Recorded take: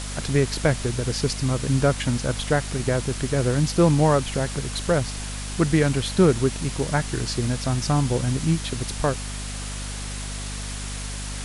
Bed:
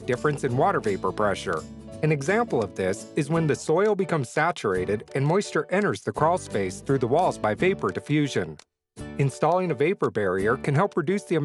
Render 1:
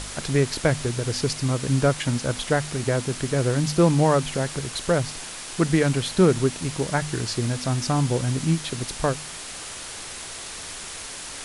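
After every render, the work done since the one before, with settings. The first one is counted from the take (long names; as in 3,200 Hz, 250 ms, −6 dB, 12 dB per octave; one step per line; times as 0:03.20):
hum removal 50 Hz, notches 5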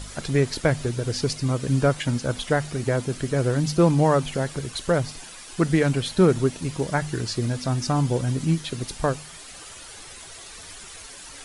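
broadband denoise 10 dB, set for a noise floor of −37 dBFS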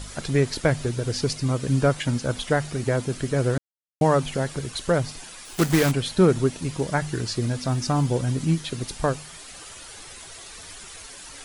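0:03.58–0:04.01: silence
0:05.45–0:05.93: one scale factor per block 3 bits
0:07.60–0:08.09: floating-point word with a short mantissa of 6 bits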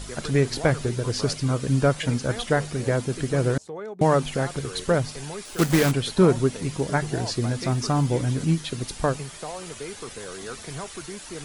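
mix in bed −14 dB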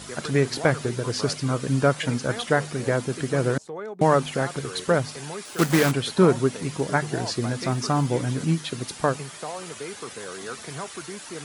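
high-pass filter 120 Hz 12 dB per octave
parametric band 1,300 Hz +3 dB 1.4 octaves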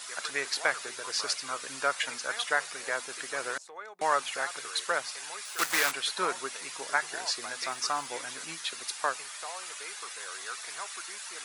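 high-pass filter 1,100 Hz 12 dB per octave
notch filter 3,100 Hz, Q 22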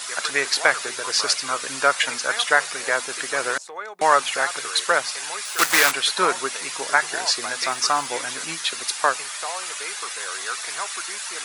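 level +10 dB
brickwall limiter −2 dBFS, peak gain reduction 1 dB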